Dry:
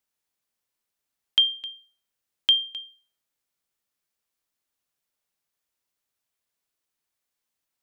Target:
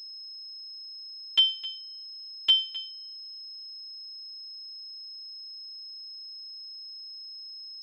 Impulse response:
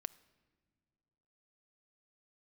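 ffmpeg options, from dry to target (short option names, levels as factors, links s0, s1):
-filter_complex "[0:a]asplit=2[s0][s1];[1:a]atrim=start_sample=2205,adelay=10[s2];[s1][s2]afir=irnorm=-1:irlink=0,volume=1.26[s3];[s0][s3]amix=inputs=2:normalize=0,aeval=exprs='val(0)+0.0112*sin(2*PI*5200*n/s)':c=same,afftfilt=real='hypot(re,im)*cos(PI*b)':imag='0':win_size=512:overlap=0.75"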